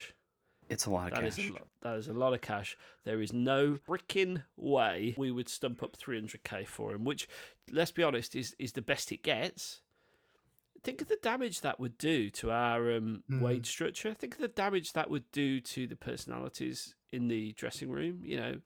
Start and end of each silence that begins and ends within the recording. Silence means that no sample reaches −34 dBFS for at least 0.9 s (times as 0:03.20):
0:09.69–0:10.86